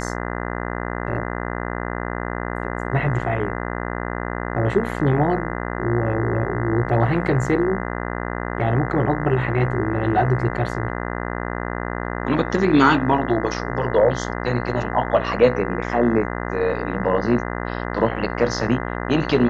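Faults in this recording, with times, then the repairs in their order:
mains buzz 60 Hz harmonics 34 −27 dBFS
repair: hum removal 60 Hz, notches 34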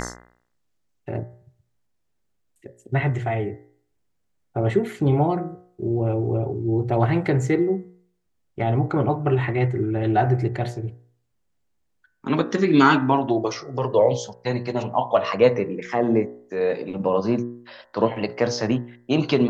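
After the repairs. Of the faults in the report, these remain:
none of them is left

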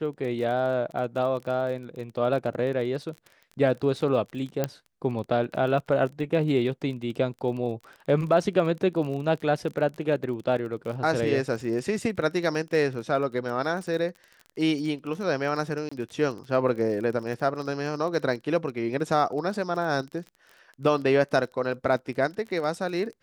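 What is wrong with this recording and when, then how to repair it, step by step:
surface crackle 29 per second −34 dBFS
0:04.64: click −11 dBFS
0:15.89–0:15.91: drop-out 25 ms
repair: click removal
repair the gap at 0:15.89, 25 ms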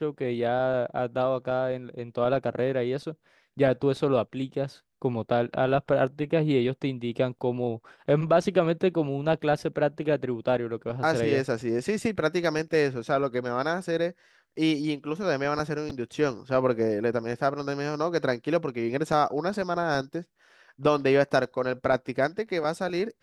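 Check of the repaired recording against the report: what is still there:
none of them is left

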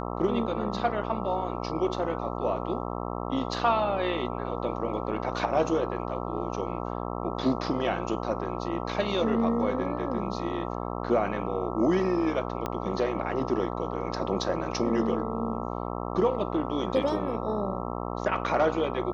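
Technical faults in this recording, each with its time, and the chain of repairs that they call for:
mains buzz 60 Hz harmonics 22 −33 dBFS
0:12.66: click −16 dBFS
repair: click removal
hum removal 60 Hz, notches 22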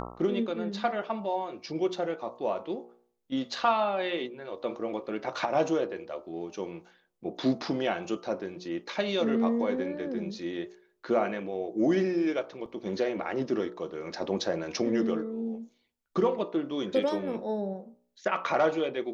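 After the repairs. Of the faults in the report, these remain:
0:12.66: click

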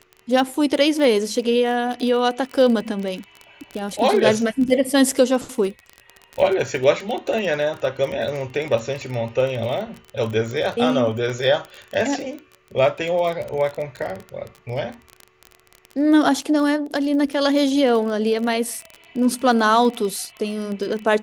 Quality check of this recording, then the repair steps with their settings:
surface crackle 25 per second −25 dBFS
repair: click removal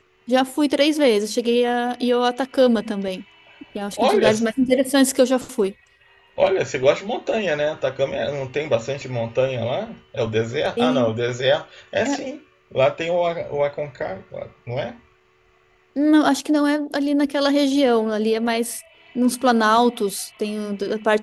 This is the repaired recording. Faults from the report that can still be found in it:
none of them is left

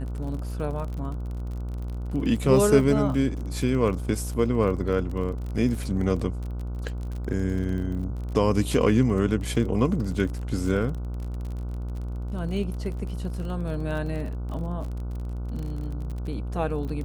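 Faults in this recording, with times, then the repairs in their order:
mains buzz 60 Hz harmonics 25 −31 dBFS
surface crackle 37 per second −33 dBFS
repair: click removal
hum removal 60 Hz, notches 25

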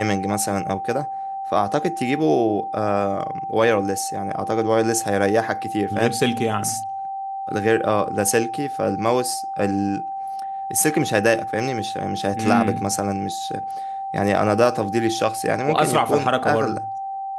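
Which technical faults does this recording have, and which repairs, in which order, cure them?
whistle 780 Hz −26 dBFS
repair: notch filter 780 Hz, Q 30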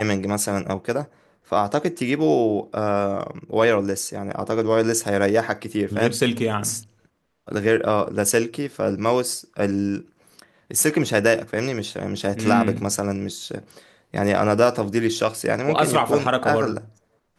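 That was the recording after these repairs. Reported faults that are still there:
none of them is left

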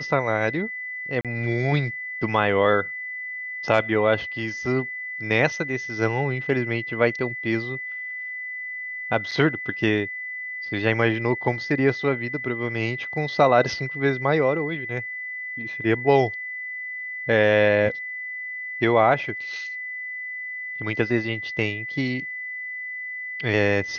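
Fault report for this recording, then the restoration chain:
whistle 2,000 Hz −30 dBFS
0:01.21–0:01.25: drop-out 37 ms
0:09.31–0:09.32: drop-out 5.5 ms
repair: notch filter 2,000 Hz, Q 30
repair the gap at 0:01.21, 37 ms
repair the gap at 0:09.31, 5.5 ms

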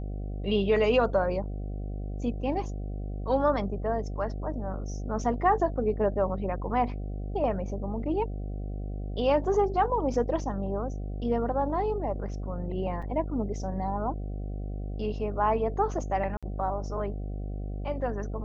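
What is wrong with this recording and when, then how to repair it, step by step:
mains buzz 50 Hz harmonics 15 −34 dBFS
0:13.02–0:13.03: drop-out 5 ms
0:16.37–0:16.43: drop-out 56 ms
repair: hum removal 50 Hz, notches 15
repair the gap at 0:13.02, 5 ms
repair the gap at 0:16.37, 56 ms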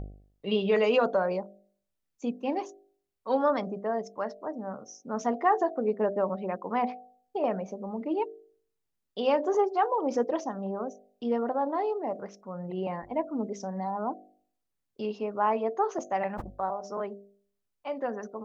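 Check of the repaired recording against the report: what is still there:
none of them is left

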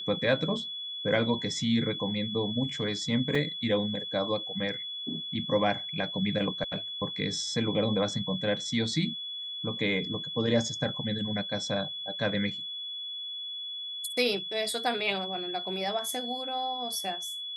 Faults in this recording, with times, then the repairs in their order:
whistle 3,400 Hz −35 dBFS
0:03.35: drop-out 3.6 ms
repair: notch filter 3,400 Hz, Q 30
repair the gap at 0:03.35, 3.6 ms

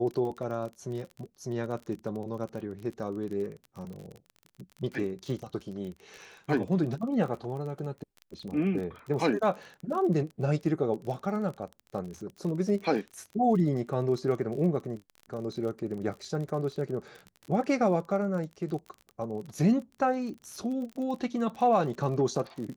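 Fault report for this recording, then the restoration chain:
surface crackle 34 per second −37 dBFS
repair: click removal

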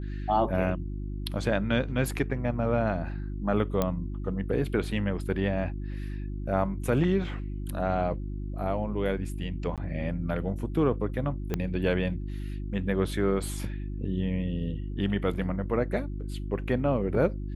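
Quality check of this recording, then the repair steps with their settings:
mains hum 50 Hz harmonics 7 −34 dBFS
0:03.82: click −12 dBFS
0:09.76–0:09.78: drop-out 17 ms
0:11.54: click −15 dBFS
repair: click removal
hum removal 50 Hz, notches 7
repair the gap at 0:09.76, 17 ms

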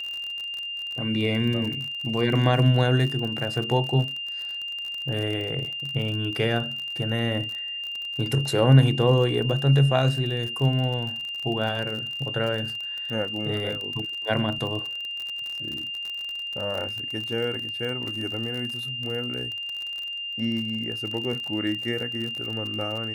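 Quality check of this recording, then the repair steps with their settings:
surface crackle 42 per second −30 dBFS
whistle 2,800 Hz −30 dBFS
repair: click removal
notch filter 2,800 Hz, Q 30

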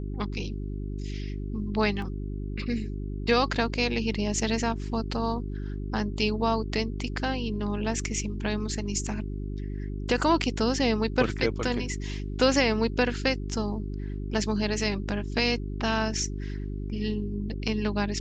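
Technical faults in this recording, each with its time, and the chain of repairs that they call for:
mains hum 50 Hz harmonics 8 −33 dBFS
0:02.02: drop-out 2.5 ms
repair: hum removal 50 Hz, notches 8
repair the gap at 0:02.02, 2.5 ms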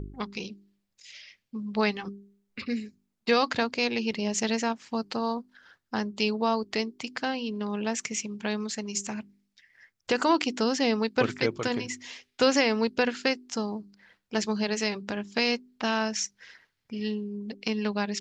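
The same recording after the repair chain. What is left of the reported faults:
none of them is left

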